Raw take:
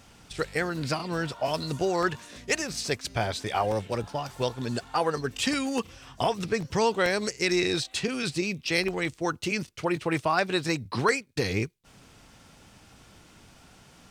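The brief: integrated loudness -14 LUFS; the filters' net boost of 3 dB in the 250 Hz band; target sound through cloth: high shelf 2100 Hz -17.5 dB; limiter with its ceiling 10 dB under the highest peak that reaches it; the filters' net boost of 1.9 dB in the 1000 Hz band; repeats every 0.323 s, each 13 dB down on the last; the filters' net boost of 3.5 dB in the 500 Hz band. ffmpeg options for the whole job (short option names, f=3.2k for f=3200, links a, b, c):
-af "equalizer=f=250:t=o:g=3,equalizer=f=500:t=o:g=3.5,equalizer=f=1k:t=o:g=5,alimiter=limit=-15.5dB:level=0:latency=1,highshelf=f=2.1k:g=-17.5,aecho=1:1:323|646|969:0.224|0.0493|0.0108,volume=15.5dB"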